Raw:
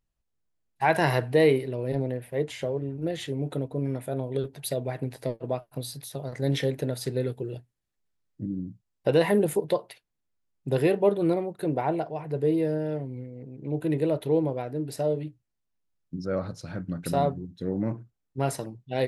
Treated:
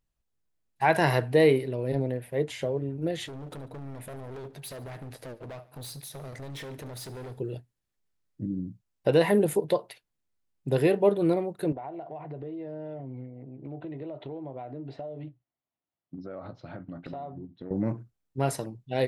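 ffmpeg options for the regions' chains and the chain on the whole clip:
ffmpeg -i in.wav -filter_complex "[0:a]asettb=1/sr,asplit=3[link_01][link_02][link_03];[link_01]atrim=end=3.264[link_04];[link_02]atrim=start=3.26:end=7.39,asetpts=PTS-STARTPTS,afade=type=in:duration=0.004:curve=qsin,afade=type=out:start_time=4.126:duration=0.004:curve=qsin,acompressor=threshold=-29dB:ratio=6:attack=3.2:release=140:knee=1:detection=peak,asoftclip=type=hard:threshold=-38dB,aecho=1:1:72|144|216|288|360:0.112|0.0651|0.0377|0.0219|0.0127,atrim=end_sample=182133[link_05];[link_03]atrim=start=7.386[link_06];[link_04][link_05]acrossfade=duration=0.004:curve1=hsin:curve2=qsin[link_07];[link_07][link_06]acrossfade=duration=0.004:curve1=qsin:curve2=hsin,asettb=1/sr,asplit=3[link_08][link_09][link_10];[link_08]atrim=end=11.724[link_11];[link_09]atrim=start=11.72:end=17.71,asetpts=PTS-STARTPTS,afade=type=in:duration=0.004:curve=qsin,afade=type=out:start_time=5.986:duration=0.004:curve=qsin,highpass=130,equalizer=frequency=190:width_type=q:width=4:gain=-8,equalizer=frequency=460:width_type=q:width=4:gain=-6,equalizer=frequency=700:width_type=q:width=4:gain=6,equalizer=frequency=1600:width_type=q:width=4:gain=-6,equalizer=frequency=2500:width_type=q:width=4:gain=-5,lowpass=frequency=3200:width=0.5412,lowpass=frequency=3200:width=1.3066,asplit=2[link_12][link_13];[link_13]adelay=15,volume=-13dB[link_14];[link_12][link_14]amix=inputs=2:normalize=0,atrim=end_sample=264159,acompressor=threshold=-34dB:ratio=16:attack=3.2:release=140:knee=1:detection=peak[link_15];[link_10]atrim=start=17.706[link_16];[link_11][link_15]acrossfade=duration=0.004:curve1=hsin:curve2=qsin[link_17];[link_17][link_16]acrossfade=duration=0.004:curve1=qsin:curve2=hsin" out.wav

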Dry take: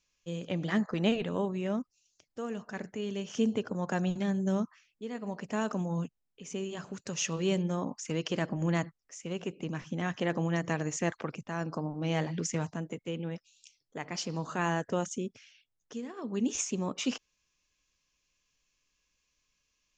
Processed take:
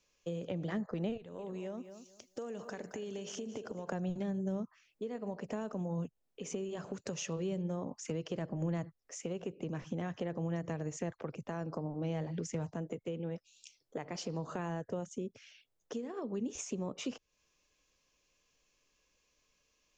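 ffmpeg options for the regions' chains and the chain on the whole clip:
ffmpeg -i in.wav -filter_complex "[0:a]asettb=1/sr,asplit=3[link_01][link_02][link_03];[link_01]atrim=end=1.174[link_04];[link_02]atrim=start=1.17:end=3.89,asetpts=PTS-STARTPTS,afade=type=in:duration=0.004:curve=qsin,afade=type=out:start_time=2.716:duration=0.004:curve=qsin,highshelf=frequency=3700:gain=10,acompressor=threshold=-42dB:ratio=10:attack=3.2:release=140:knee=1:detection=peak,aecho=1:1:220|440|660:0.224|0.0515|0.0118,atrim=end_sample=119952[link_05];[link_03]atrim=start=3.886[link_06];[link_04][link_05]acrossfade=duration=0.004:curve1=hsin:curve2=qsin[link_07];[link_07][link_06]acrossfade=duration=0.004:curve1=qsin:curve2=hsin,equalizer=frequency=500:width_type=o:width=1.6:gain=10,acrossover=split=130[link_08][link_09];[link_09]acompressor=threshold=-39dB:ratio=6[link_10];[link_08][link_10]amix=inputs=2:normalize=0,volume=1dB" out.wav

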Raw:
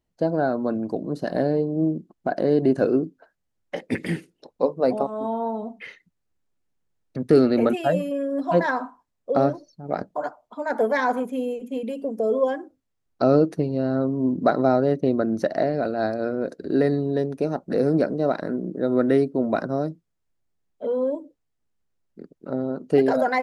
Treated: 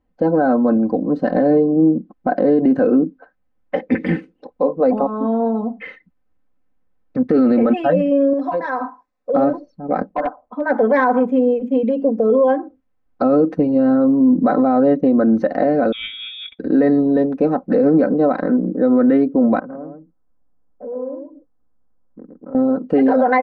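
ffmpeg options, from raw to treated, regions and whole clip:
ffmpeg -i in.wav -filter_complex "[0:a]asettb=1/sr,asplit=3[link_01][link_02][link_03];[link_01]atrim=end=8.334[link_04];[link_02]atrim=start=8.33:end=9.34,asetpts=PTS-STARTPTS,afade=type=in:duration=0.004:curve=qsin,afade=type=out:start_time=1.006:duration=0.004:curve=qsin,bass=frequency=250:gain=-11,treble=frequency=4000:gain=10,bandreject=frequency=3100:width=7.6,acompressor=threshold=-27dB:ratio=12:attack=3.2:release=140:knee=1:detection=peak[link_05];[link_03]atrim=start=9.336[link_06];[link_04][link_05]acrossfade=duration=0.004:curve1=hsin:curve2=qsin[link_07];[link_07][link_06]acrossfade=duration=0.004:curve1=qsin:curve2=hsin,asettb=1/sr,asplit=3[link_08][link_09][link_10];[link_08]atrim=end=10.094[link_11];[link_09]atrim=start=10.09:end=10.66,asetpts=PTS-STARTPTS,afade=type=in:duration=0.004:curve=qsin,afade=type=out:start_time=0.566:duration=0.004:curve=qsin,lowpass=frequency=1600:poles=1,aeval=exprs='0.0841*(abs(mod(val(0)/0.0841+3,4)-2)-1)':channel_layout=same[link_12];[link_10]atrim=start=10.656[link_13];[link_11][link_12]acrossfade=duration=0.004:curve1=hsin:curve2=qsin[link_14];[link_14][link_13]acrossfade=duration=0.004:curve1=qsin:curve2=hsin,asettb=1/sr,asplit=3[link_15][link_16][link_17];[link_15]atrim=end=15.924[link_18];[link_16]atrim=start=15.92:end=16.59,asetpts=PTS-STARTPTS,afade=type=in:duration=0.004:curve=qsin,afade=type=out:start_time=0.666:duration=0.004:curve=qsin,lowshelf=frequency=360:gain=-11.5,lowpass=frequency=3300:width_type=q:width=0.5098,lowpass=frequency=3300:width_type=q:width=0.6013,lowpass=frequency=3300:width_type=q:width=0.9,lowpass=frequency=3300:width_type=q:width=2.563,afreqshift=-3900[link_19];[link_17]atrim=start=16.586[link_20];[link_18][link_19]acrossfade=duration=0.004:curve1=hsin:curve2=qsin[link_21];[link_21][link_20]acrossfade=duration=0.004:curve1=qsin:curve2=hsin,asettb=1/sr,asplit=3[link_22][link_23][link_24];[link_22]atrim=end=19.594[link_25];[link_23]atrim=start=19.59:end=22.55,asetpts=PTS-STARTPTS,afade=type=in:duration=0.004:curve=qsin,afade=type=out:start_time=2.956:duration=0.004:curve=qsin,lowpass=frequency=1400:width=0.5412,lowpass=frequency=1400:width=1.3066,acompressor=threshold=-43dB:ratio=3:attack=3.2:release=140:knee=1:detection=peak,aecho=1:1:111:0.562,atrim=end_sample=130536[link_26];[link_24]atrim=start=22.546[link_27];[link_25][link_26]acrossfade=duration=0.004:curve1=hsin:curve2=qsin[link_28];[link_28][link_27]acrossfade=duration=0.004:curve1=qsin:curve2=hsin,lowpass=1800,aecho=1:1:3.9:0.75,alimiter=level_in=13.5dB:limit=-1dB:release=50:level=0:latency=1,volume=-6dB" out.wav

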